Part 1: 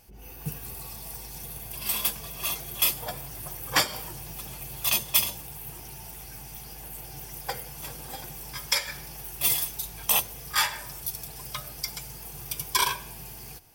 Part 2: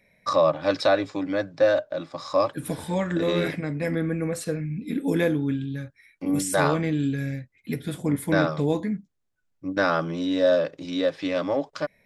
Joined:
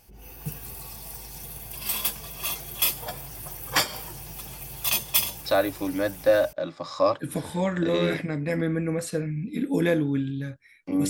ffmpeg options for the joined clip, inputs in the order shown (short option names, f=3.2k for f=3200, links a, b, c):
-filter_complex "[0:a]apad=whole_dur=11.09,atrim=end=11.09,atrim=end=6.53,asetpts=PTS-STARTPTS[a];[1:a]atrim=start=0.79:end=6.43,asetpts=PTS-STARTPTS[b];[a][b]acrossfade=d=1.08:c1=log:c2=log"